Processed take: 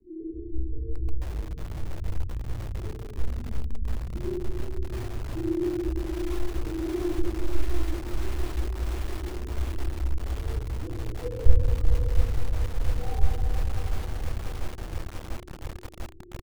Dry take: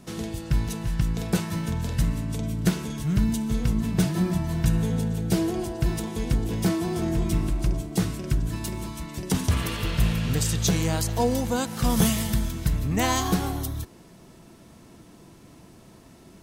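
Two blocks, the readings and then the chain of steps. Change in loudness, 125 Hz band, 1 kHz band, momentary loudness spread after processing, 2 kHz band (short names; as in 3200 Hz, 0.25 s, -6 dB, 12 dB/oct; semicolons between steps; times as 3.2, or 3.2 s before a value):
-6.0 dB, -5.5 dB, -10.0 dB, 10 LU, -9.0 dB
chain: bell 470 Hz +2 dB 0.46 oct; comb 2.4 ms, depth 52%; reverse; compressor 12:1, threshold -28 dBFS, peak gain reduction 14.5 dB; reverse; loudest bins only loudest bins 1; rotary speaker horn 5.5 Hz, later 0.8 Hz, at 12.11; LPC vocoder at 8 kHz whisper; fixed phaser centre 900 Hz, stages 8; on a send: flutter echo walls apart 5.3 m, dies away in 0.23 s; on the sum: shoebox room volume 190 m³, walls hard, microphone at 0.83 m; lo-fi delay 0.693 s, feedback 80%, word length 6-bit, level -7.5 dB; gain +3 dB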